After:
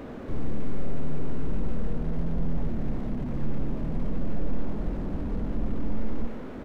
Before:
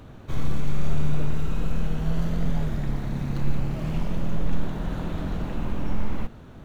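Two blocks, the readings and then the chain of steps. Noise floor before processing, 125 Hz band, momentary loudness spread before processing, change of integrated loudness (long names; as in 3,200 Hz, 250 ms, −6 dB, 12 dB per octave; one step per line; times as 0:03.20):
−44 dBFS, −5.5 dB, 4 LU, −3.0 dB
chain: octave-band graphic EQ 125/250/500/1,000/2,000 Hz −7/+10/+10/+4/+10 dB
downward compressor, threshold −19 dBFS, peak gain reduction 7.5 dB
repeating echo 72 ms, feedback 59%, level −14 dB
slew-rate limiting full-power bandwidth 6.7 Hz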